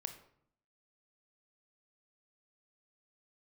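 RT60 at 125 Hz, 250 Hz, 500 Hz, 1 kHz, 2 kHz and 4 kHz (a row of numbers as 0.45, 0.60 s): 0.85, 0.85, 0.65, 0.65, 0.55, 0.45 s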